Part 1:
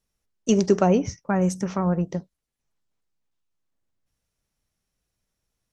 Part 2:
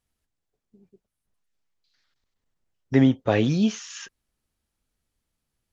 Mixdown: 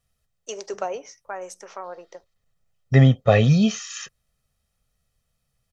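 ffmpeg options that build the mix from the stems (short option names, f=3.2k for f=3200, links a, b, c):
-filter_complex "[0:a]highpass=f=480:w=0.5412,highpass=f=480:w=1.3066,volume=-5.5dB[a];[1:a]aecho=1:1:1.6:0.78,volume=2dB[b];[a][b]amix=inputs=2:normalize=0,equalizer=f=140:t=o:w=0.71:g=5.5"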